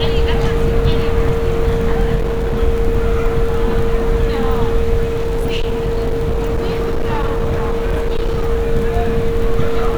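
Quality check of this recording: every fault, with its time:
crackle 19/s
tone 460 Hz -18 dBFS
2.15–2.57 clipped -13.5 dBFS
5.07–8.49 clipped -13 dBFS

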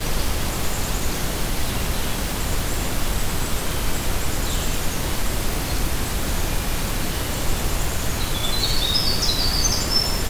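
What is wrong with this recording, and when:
crackle 280/s -24 dBFS

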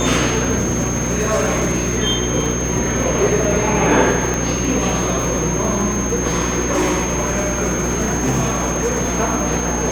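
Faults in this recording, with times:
crackle 210/s -25 dBFS
hum 60 Hz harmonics 6 -23 dBFS
tone 6400 Hz -24 dBFS
0.57–1.97 clipped -13 dBFS
4.34 pop -8 dBFS
6.72–9.17 clipped -13 dBFS

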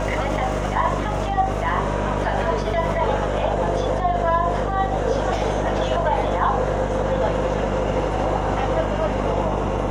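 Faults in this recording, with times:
buzz 50 Hz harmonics 19 -26 dBFS

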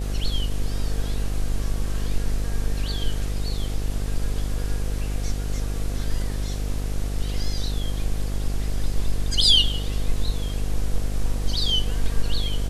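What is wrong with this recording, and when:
buzz 50 Hz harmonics 16 -27 dBFS

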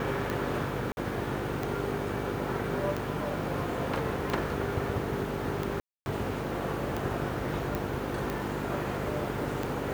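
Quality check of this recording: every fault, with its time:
buzz 50 Hz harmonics 9 -37 dBFS
tick 45 rpm
0.92–0.97 gap 51 ms
5.8–6.06 gap 0.261 s
7.75 pop

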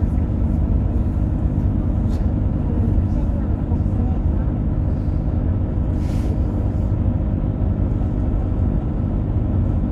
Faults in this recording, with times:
hum 50 Hz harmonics 6 -24 dBFS

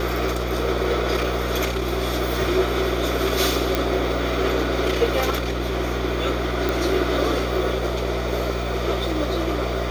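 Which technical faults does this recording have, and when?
buzz 60 Hz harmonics 19 -27 dBFS
3.75 pop
6.69 pop

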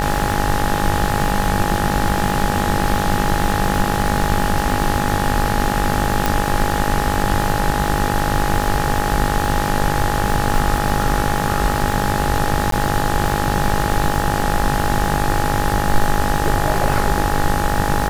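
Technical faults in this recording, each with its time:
buzz 50 Hz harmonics 38 -22 dBFS
crackle 240/s -24 dBFS
tone 830 Hz -23 dBFS
6.26 pop
12.71–12.72 gap 13 ms

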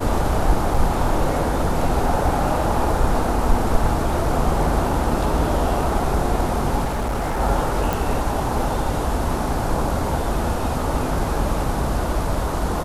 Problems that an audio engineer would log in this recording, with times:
0.74 gap 4.4 ms
6.84–7.41 clipped -19.5 dBFS
7.93 pop

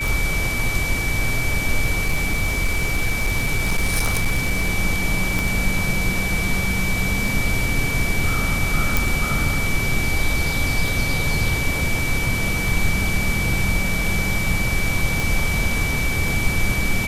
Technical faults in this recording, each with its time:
tick 33 1/3 rpm
tone 2300 Hz -24 dBFS
2.04–4.71 clipped -14 dBFS
5.39 pop
8.97 pop
15.2 pop

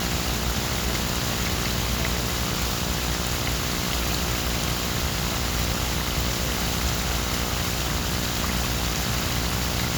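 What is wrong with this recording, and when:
buzz 60 Hz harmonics 29 -30 dBFS

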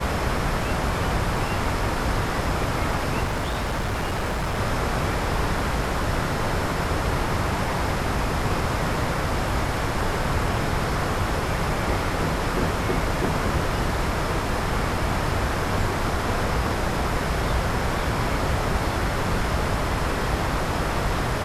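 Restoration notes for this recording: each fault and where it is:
3.23–4.59 clipped -22 dBFS

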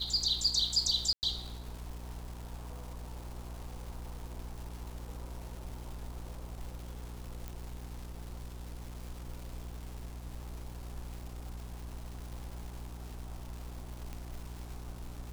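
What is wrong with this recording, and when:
crackle 510/s -43 dBFS
hum 60 Hz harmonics 7 -44 dBFS
1.13–1.23 gap 99 ms
7.48 pop
14.13 pop -28 dBFS

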